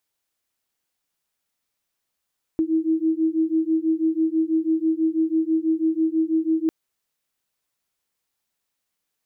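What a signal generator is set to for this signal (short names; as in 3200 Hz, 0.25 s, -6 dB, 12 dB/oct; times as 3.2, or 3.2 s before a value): beating tones 318 Hz, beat 6.1 Hz, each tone -21.5 dBFS 4.10 s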